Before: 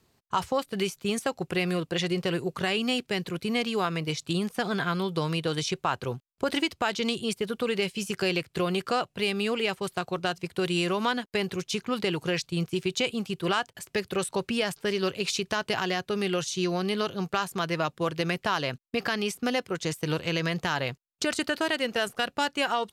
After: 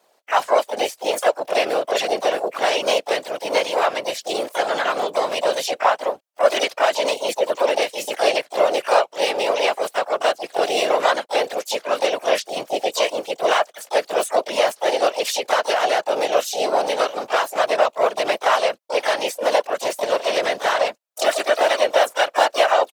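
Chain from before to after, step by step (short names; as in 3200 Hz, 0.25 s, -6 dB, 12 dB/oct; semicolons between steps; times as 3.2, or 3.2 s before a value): harmoniser -4 st -9 dB, +4 st -6 dB, +12 st -8 dB; whisperiser; resonant high-pass 600 Hz, resonance Q 3.5; gain +3.5 dB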